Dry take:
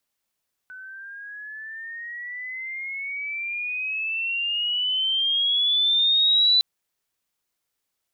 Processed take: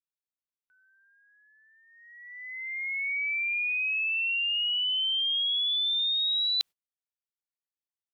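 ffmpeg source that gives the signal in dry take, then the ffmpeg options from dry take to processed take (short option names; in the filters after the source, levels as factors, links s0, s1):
-f lavfi -i "aevalsrc='pow(10,(-14.5+23*(t/5.91-1))/20)*sin(2*PI*1500*5.91/(17*log(2)/12)*(exp(17*log(2)/12*t/5.91)-1))':d=5.91:s=44100"
-af "agate=range=0.0501:threshold=0.0224:ratio=16:detection=peak,equalizer=f=3100:w=1.3:g=3.5,areverse,acompressor=threshold=0.0447:ratio=6,areverse"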